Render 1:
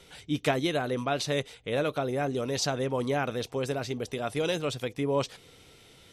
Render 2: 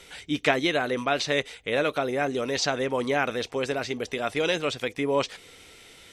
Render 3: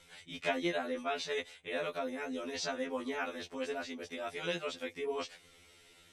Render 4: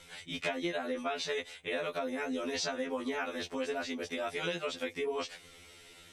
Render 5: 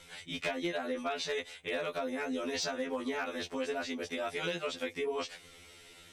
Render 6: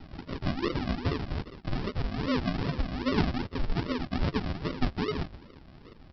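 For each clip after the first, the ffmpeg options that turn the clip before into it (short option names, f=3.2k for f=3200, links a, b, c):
-filter_complex "[0:a]equalizer=f=125:t=o:w=1:g=-8,equalizer=f=2k:t=o:w=1:g=6,equalizer=f=8k:t=o:w=1:g=5,acrossover=split=6200[a][b];[b]acompressor=threshold=-55dB:ratio=4:attack=1:release=60[c];[a][c]amix=inputs=2:normalize=0,volume=3dB"
-af "afftfilt=real='re*2*eq(mod(b,4),0)':imag='im*2*eq(mod(b,4),0)':win_size=2048:overlap=0.75,volume=-8.5dB"
-af "acompressor=threshold=-37dB:ratio=6,volume=6dB"
-af "volume=26dB,asoftclip=hard,volume=-26dB"
-af "aphaser=in_gain=1:out_gain=1:delay=3.7:decay=0.55:speed=0.62:type=sinusoidal,aresample=11025,acrusher=samples=19:mix=1:aa=0.000001:lfo=1:lforange=11.4:lforate=2.5,aresample=44100,volume=4dB"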